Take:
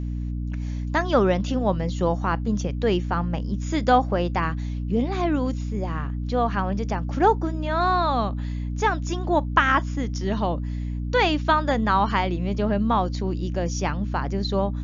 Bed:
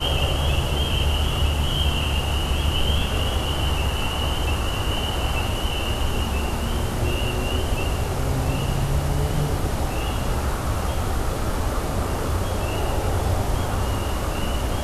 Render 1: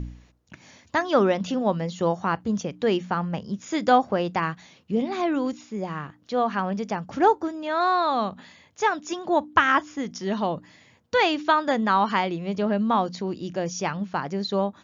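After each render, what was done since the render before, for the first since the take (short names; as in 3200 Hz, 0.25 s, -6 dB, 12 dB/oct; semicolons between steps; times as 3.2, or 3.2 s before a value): de-hum 60 Hz, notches 5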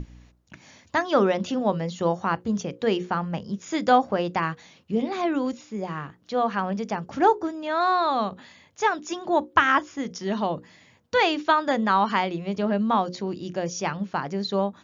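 notches 60/120/180/240/300/360/420/480/540 Hz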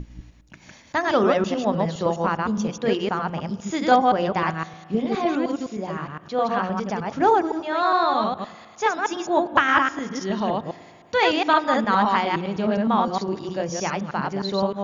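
reverse delay 0.103 s, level -1.5 dB; spring tank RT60 2.3 s, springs 37 ms, chirp 75 ms, DRR 18 dB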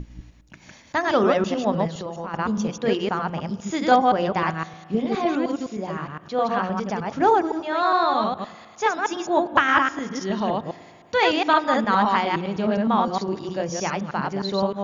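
1.87–2.34 compressor, threshold -28 dBFS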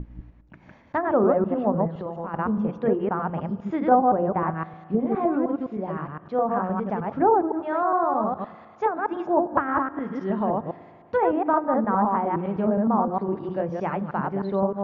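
treble ducked by the level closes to 1100 Hz, closed at -17.5 dBFS; LPF 1400 Hz 12 dB/oct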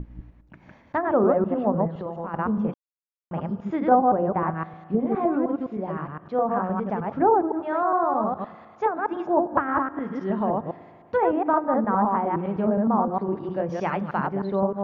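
2.74–3.31 mute; 13.69–14.27 high shelf 2400 Hz +11.5 dB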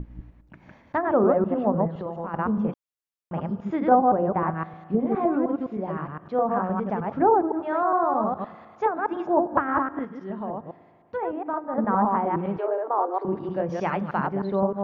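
10.05–11.78 gain -7.5 dB; 12.58–13.25 steep high-pass 300 Hz 96 dB/oct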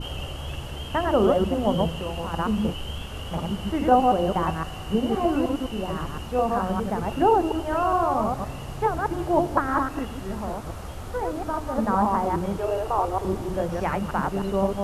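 add bed -12 dB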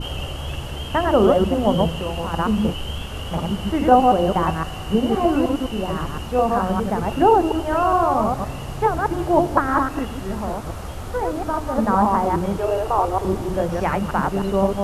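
gain +4.5 dB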